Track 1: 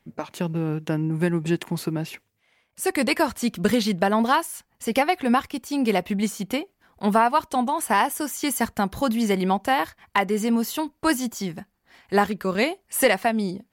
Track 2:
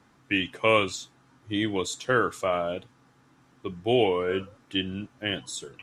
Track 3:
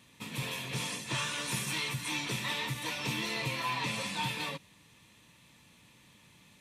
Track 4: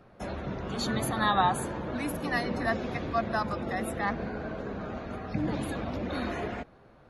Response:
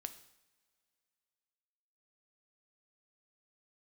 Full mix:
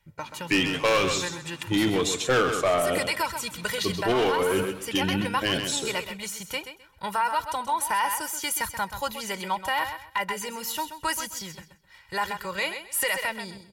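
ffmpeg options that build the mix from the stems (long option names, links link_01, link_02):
-filter_complex "[0:a]equalizer=frequency=410:width_type=o:width=1:gain=-14.5,aecho=1:1:2.1:0.84,acrossover=split=390[link_01][link_02];[link_01]acompressor=threshold=-39dB:ratio=6[link_03];[link_03][link_02]amix=inputs=2:normalize=0,volume=-2dB,asplit=2[link_04][link_05];[link_05]volume=-10.5dB[link_06];[1:a]acontrast=64,volume=16dB,asoftclip=hard,volume=-16dB,adelay=200,volume=1dB,asplit=2[link_07][link_08];[link_08]volume=-9dB[link_09];[2:a]adelay=350,volume=-17.5dB[link_10];[link_06][link_09]amix=inputs=2:normalize=0,aecho=0:1:130|260|390|520:1|0.22|0.0484|0.0106[link_11];[link_04][link_07][link_10][link_11]amix=inputs=4:normalize=0,alimiter=limit=-16.5dB:level=0:latency=1:release=11"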